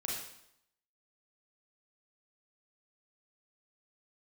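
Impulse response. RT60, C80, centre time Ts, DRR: 0.75 s, 4.5 dB, 58 ms, -4.0 dB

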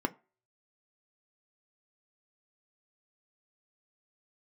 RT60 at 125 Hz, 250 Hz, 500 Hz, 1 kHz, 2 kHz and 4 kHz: 0.25, 0.25, 0.35, 0.35, 0.30, 0.20 s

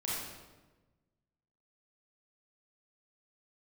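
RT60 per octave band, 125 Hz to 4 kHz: 1.7, 1.5, 1.3, 1.1, 1.0, 0.85 s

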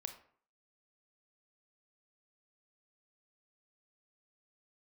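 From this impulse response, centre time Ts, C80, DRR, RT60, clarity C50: 12 ms, 14.0 dB, 6.5 dB, 0.55 s, 10.0 dB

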